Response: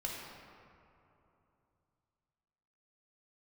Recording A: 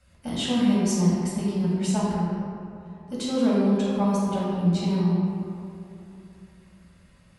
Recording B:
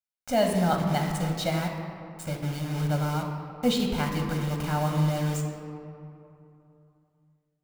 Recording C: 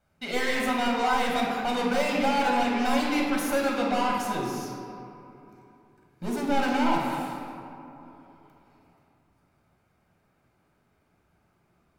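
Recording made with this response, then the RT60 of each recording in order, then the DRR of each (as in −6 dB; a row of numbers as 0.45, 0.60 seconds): C; 3.0, 3.0, 3.0 seconds; −8.0, 2.0, −3.0 decibels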